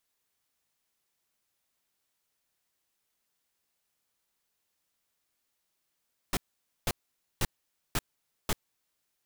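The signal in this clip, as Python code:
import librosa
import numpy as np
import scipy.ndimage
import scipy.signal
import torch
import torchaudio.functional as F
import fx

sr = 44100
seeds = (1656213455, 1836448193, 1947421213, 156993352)

y = fx.noise_burst(sr, seeds[0], colour='pink', on_s=0.04, off_s=0.5, bursts=5, level_db=-27.5)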